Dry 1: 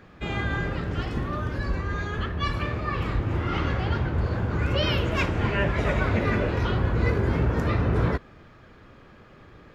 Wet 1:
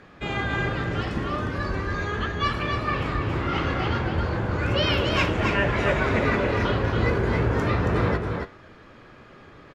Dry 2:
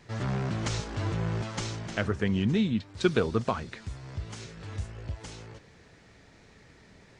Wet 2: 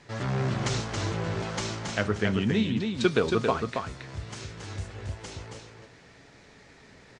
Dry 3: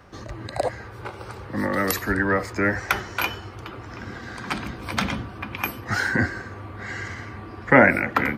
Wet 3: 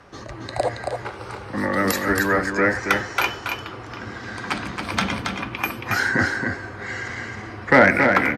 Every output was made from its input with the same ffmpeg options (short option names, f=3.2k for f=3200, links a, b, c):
-af "lowpass=11k,lowshelf=f=170:g=-6.5,acontrast=33,flanger=delay=7.1:depth=3.3:regen=82:speed=0.31:shape=sinusoidal,aecho=1:1:275:0.562,volume=2dB"